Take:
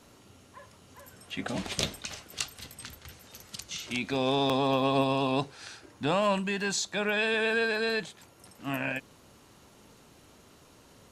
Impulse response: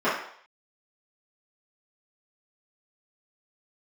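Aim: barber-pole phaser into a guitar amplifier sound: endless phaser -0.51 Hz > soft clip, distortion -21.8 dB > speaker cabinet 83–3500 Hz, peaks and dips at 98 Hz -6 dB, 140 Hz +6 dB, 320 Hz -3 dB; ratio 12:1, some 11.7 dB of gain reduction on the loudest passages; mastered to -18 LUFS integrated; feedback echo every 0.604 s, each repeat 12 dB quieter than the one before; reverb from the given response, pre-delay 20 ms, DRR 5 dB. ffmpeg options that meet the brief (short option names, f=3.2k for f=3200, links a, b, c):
-filter_complex "[0:a]acompressor=threshold=-34dB:ratio=12,aecho=1:1:604|1208|1812:0.251|0.0628|0.0157,asplit=2[a][b];[1:a]atrim=start_sample=2205,adelay=20[c];[b][c]afir=irnorm=-1:irlink=0,volume=-22dB[d];[a][d]amix=inputs=2:normalize=0,asplit=2[e][f];[f]afreqshift=-0.51[g];[e][g]amix=inputs=2:normalize=1,asoftclip=threshold=-29dB,highpass=83,equalizer=f=98:t=q:w=4:g=-6,equalizer=f=140:t=q:w=4:g=6,equalizer=f=320:t=q:w=4:g=-3,lowpass=f=3.5k:w=0.5412,lowpass=f=3.5k:w=1.3066,volume=25dB"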